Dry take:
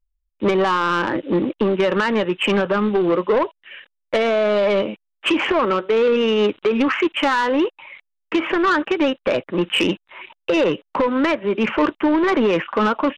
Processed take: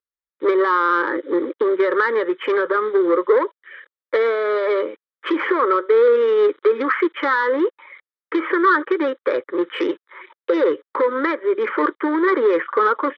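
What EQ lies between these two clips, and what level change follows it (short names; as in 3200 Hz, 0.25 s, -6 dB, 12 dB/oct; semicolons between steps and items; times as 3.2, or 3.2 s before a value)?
speaker cabinet 480–3300 Hz, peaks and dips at 640 Hz -10 dB, 1000 Hz -7 dB, 1500 Hz -5 dB, 2500 Hz -3 dB; fixed phaser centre 740 Hz, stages 6; +8.5 dB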